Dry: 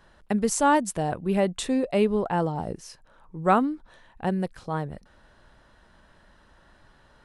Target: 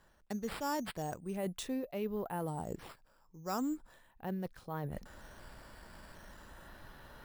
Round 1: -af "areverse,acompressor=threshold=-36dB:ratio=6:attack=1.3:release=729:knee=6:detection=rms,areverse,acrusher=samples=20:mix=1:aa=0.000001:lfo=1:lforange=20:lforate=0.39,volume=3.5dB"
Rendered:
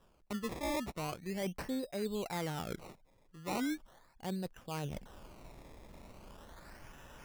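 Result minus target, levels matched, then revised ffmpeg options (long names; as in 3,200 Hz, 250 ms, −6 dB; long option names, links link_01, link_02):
sample-and-hold swept by an LFO: distortion +10 dB
-af "areverse,acompressor=threshold=-36dB:ratio=6:attack=1.3:release=729:knee=6:detection=rms,areverse,acrusher=samples=5:mix=1:aa=0.000001:lfo=1:lforange=5:lforate=0.39,volume=3.5dB"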